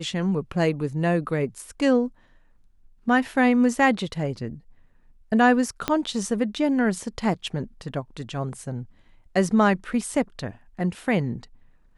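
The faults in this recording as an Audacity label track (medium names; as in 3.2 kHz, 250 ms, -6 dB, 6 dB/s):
5.880000	5.880000	pop -8 dBFS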